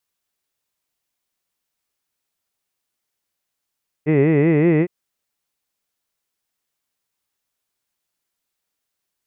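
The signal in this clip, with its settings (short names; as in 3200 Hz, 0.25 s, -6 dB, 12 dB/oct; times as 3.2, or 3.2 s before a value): formant-synthesis vowel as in hid, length 0.81 s, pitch 144 Hz, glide +2.5 st, vibrato depth 1.45 st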